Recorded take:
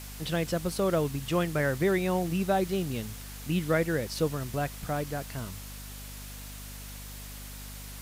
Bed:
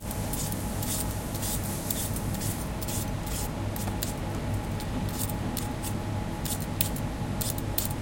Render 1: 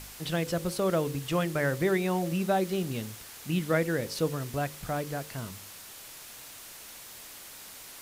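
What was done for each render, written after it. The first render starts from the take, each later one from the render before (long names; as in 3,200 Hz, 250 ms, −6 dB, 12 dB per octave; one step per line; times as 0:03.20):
hum removal 50 Hz, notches 11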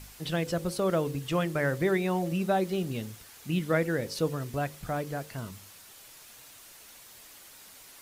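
broadband denoise 6 dB, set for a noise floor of −47 dBFS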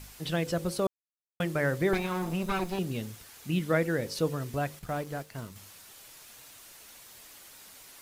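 0:00.87–0:01.40: silence
0:01.93–0:02.79: lower of the sound and its delayed copy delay 0.79 ms
0:04.79–0:05.56: mu-law and A-law mismatch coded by A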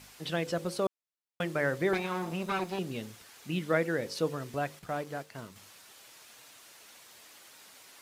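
high-pass filter 250 Hz 6 dB per octave
high-shelf EQ 9,400 Hz −9.5 dB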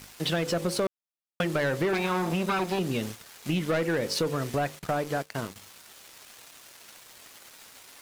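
leveller curve on the samples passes 3
downward compressor 4 to 1, threshold −25 dBFS, peak gain reduction 7 dB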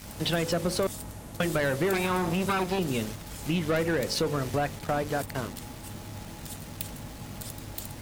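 mix in bed −9.5 dB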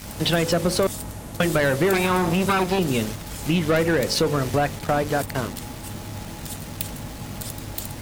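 level +6.5 dB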